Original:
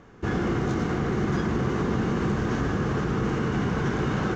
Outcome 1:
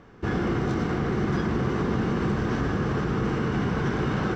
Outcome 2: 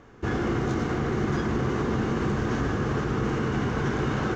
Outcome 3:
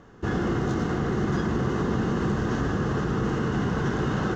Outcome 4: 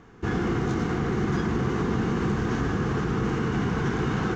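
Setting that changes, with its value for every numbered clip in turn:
notch filter, centre frequency: 6,700, 180, 2,300, 580 Hertz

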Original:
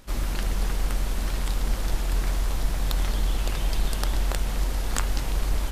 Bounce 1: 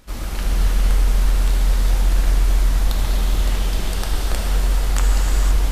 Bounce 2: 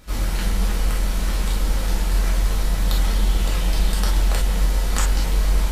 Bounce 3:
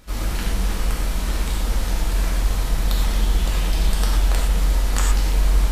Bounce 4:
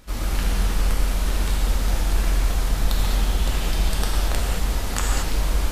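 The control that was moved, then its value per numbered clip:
reverb whose tail is shaped and stops, gate: 540, 80, 140, 250 milliseconds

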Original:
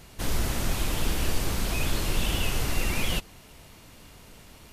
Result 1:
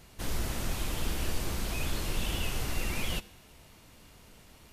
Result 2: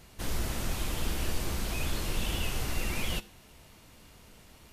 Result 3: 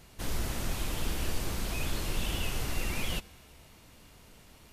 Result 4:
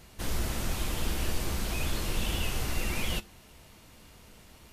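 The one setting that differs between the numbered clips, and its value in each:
tuned comb filter, decay: 0.87, 0.42, 2.1, 0.18 seconds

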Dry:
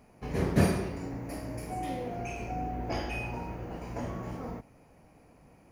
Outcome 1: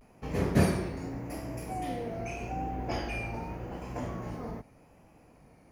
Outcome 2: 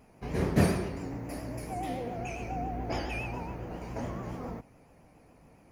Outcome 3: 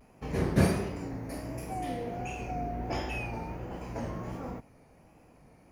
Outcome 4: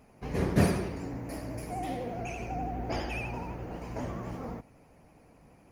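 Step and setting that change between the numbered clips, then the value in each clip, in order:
pitch vibrato, speed: 0.84, 7.2, 1.4, 12 Hertz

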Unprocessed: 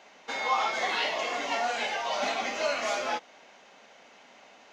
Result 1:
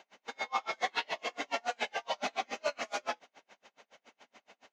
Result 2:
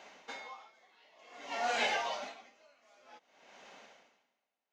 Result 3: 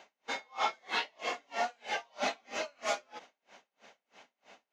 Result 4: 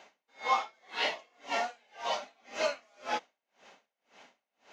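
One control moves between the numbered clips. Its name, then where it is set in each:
tremolo with a sine in dB, speed: 7.1, 0.54, 3.1, 1.9 Hertz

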